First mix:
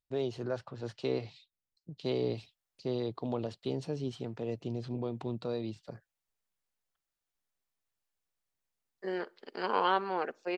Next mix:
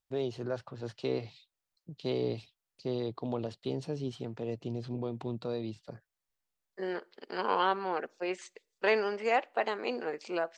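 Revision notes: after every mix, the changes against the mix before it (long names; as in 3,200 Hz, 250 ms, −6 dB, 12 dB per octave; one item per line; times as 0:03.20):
second voice: entry −2.25 s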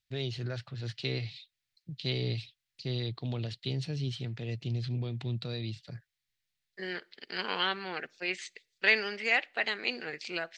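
master: add octave-band graphic EQ 125/250/500/1,000/2,000/4,000 Hz +9/−4/−6/−10/+9/+9 dB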